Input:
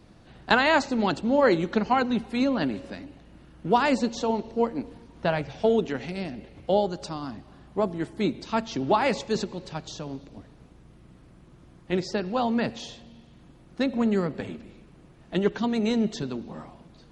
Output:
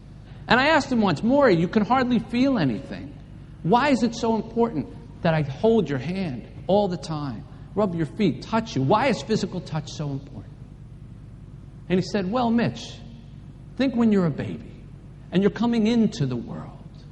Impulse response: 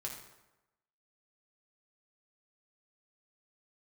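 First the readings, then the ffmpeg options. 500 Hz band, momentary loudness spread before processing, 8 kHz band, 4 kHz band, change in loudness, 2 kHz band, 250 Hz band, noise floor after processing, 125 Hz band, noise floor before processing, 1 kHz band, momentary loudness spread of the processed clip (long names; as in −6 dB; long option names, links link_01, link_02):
+2.5 dB, 16 LU, +2.0 dB, +2.0 dB, +3.5 dB, +2.0 dB, +4.5 dB, −43 dBFS, +9.0 dB, −53 dBFS, +2.0 dB, 18 LU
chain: -af "aeval=exprs='val(0)+0.00355*(sin(2*PI*50*n/s)+sin(2*PI*2*50*n/s)/2+sin(2*PI*3*50*n/s)/3+sin(2*PI*4*50*n/s)/4+sin(2*PI*5*50*n/s)/5)':channel_layout=same,equalizer=frequency=130:width_type=o:width=0.89:gain=10.5,volume=2dB"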